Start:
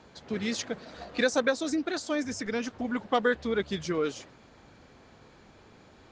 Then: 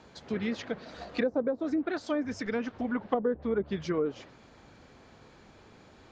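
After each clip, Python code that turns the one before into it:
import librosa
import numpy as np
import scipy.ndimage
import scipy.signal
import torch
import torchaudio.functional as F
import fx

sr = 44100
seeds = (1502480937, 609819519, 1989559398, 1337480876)

y = fx.env_lowpass_down(x, sr, base_hz=540.0, full_db=-22.5)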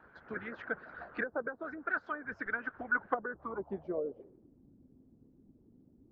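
y = fx.filter_sweep_lowpass(x, sr, from_hz=1500.0, to_hz=260.0, start_s=3.26, end_s=4.58, q=7.6)
y = fx.hpss(y, sr, part='harmonic', gain_db=-13)
y = y * 10.0 ** (-5.0 / 20.0)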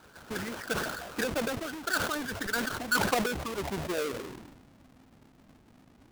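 y = fx.halfwave_hold(x, sr)
y = fx.sustainer(y, sr, db_per_s=43.0)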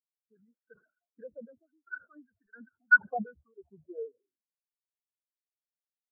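y = fx.spectral_expand(x, sr, expansion=4.0)
y = y * 10.0 ** (4.5 / 20.0)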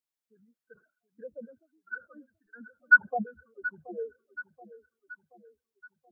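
y = fx.echo_feedback(x, sr, ms=728, feedback_pct=49, wet_db=-16)
y = y * 10.0 ** (2.5 / 20.0)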